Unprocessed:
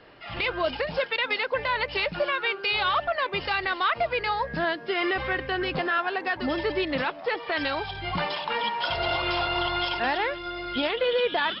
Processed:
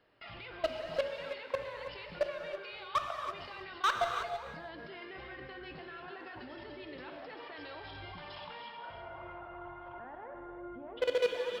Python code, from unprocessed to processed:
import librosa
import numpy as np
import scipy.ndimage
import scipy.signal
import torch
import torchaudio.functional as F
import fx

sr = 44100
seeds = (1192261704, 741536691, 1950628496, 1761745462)

y = fx.lowpass(x, sr, hz=fx.line((8.77, 1900.0), (10.96, 1200.0)), slope=24, at=(8.77, 10.96), fade=0.02)
y = fx.level_steps(y, sr, step_db=23)
y = fx.clip_asym(y, sr, top_db=-22.5, bottom_db=-21.0)
y = y + 10.0 ** (-13.0 / 20.0) * np.pad(y, (int(323 * sr / 1000.0), 0))[:len(y)]
y = fx.rev_gated(y, sr, seeds[0], gate_ms=350, shape='flat', drr_db=4.0)
y = y * 10.0 ** (-2.0 / 20.0)